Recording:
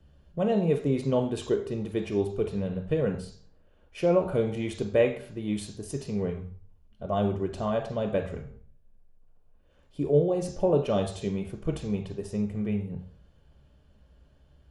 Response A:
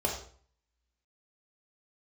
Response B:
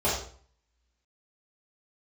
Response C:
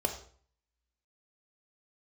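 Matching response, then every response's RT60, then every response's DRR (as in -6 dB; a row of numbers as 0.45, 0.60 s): C; 0.50, 0.50, 0.50 s; -1.5, -10.5, 4.0 dB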